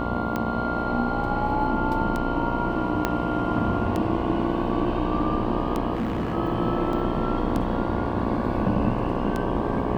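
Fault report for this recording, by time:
buzz 60 Hz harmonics 19 -29 dBFS
tick 33 1/3 rpm -14 dBFS
3.05 s: pop -8 dBFS
5.95–6.35 s: clipped -22.5 dBFS
6.93 s: dropout 2.6 ms

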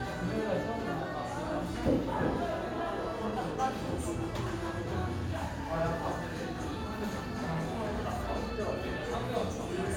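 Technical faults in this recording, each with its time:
6.76–7.94 s: clipped -30 dBFS

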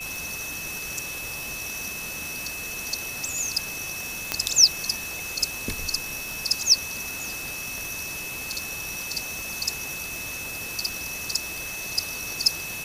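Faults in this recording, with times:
tick 78 rpm
whine 2.6 kHz -34 dBFS
4.32 s: pop -5 dBFS
7.78 s: pop

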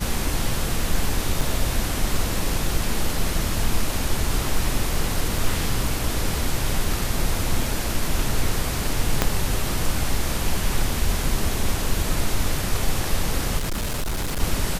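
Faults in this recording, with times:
1.41 s: dropout 4.2 ms
5.38 s: dropout 2.6 ms
9.22 s: pop -2 dBFS
13.57–14.42 s: clipped -21.5 dBFS

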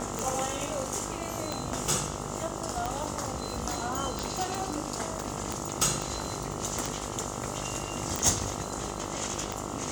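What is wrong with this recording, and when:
buzz 50 Hz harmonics 27 -38 dBFS
tick 45 rpm
6.02 s: pop
8.16 s: pop

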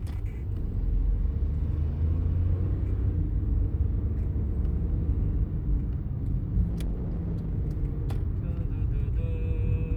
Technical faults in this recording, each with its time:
6.69–7.55 s: clipped -26.5 dBFS

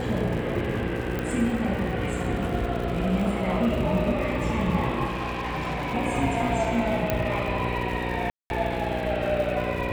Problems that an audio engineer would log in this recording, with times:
buzz 60 Hz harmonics 9 -31 dBFS
crackle 160 per s -34 dBFS
1.19 s: pop -16 dBFS
5.05–5.95 s: clipped -25.5 dBFS
7.10 s: pop -9 dBFS
8.30–8.50 s: dropout 201 ms

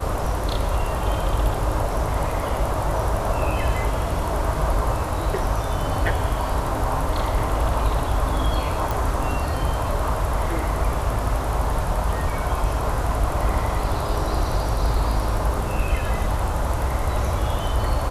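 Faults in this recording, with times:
8.91 s: pop

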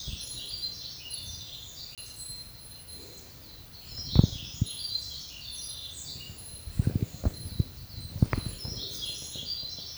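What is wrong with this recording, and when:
1.95–1.98 s: dropout 27 ms

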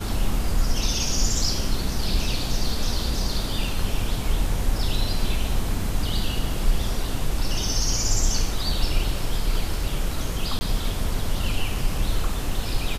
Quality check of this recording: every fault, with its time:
10.59–10.61 s: dropout 20 ms

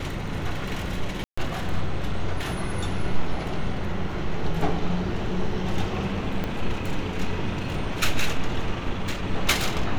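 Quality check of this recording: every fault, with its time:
1.24–1.38 s: dropout 135 ms
6.44 s: pop -15 dBFS

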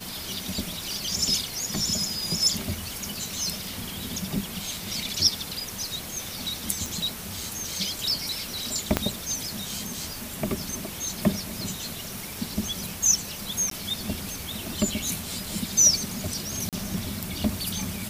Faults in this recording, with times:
3.67 s: pop
6.86 s: pop
8.97 s: pop -5 dBFS
13.70–13.71 s: dropout 13 ms
16.69–16.73 s: dropout 37 ms

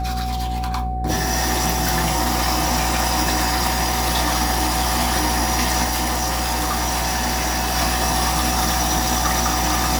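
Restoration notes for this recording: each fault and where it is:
buzz 60 Hz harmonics 12 -25 dBFS
whine 750 Hz -26 dBFS
5.83–7.77 s: clipped -17.5 dBFS

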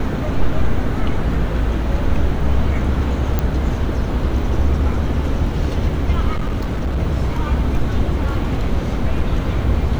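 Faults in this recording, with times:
3.39 s: pop -5 dBFS
6.31–6.98 s: clipped -16 dBFS

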